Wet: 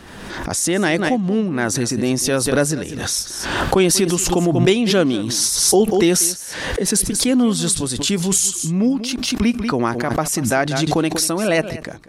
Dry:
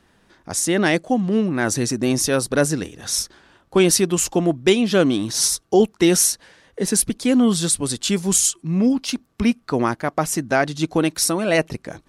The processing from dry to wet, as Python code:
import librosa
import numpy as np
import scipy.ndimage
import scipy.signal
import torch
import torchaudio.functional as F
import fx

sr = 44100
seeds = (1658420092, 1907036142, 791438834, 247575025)

y = x + 10.0 ** (-16.5 / 20.0) * np.pad(x, (int(191 * sr / 1000.0), 0))[:len(x)]
y = fx.pre_swell(y, sr, db_per_s=38.0)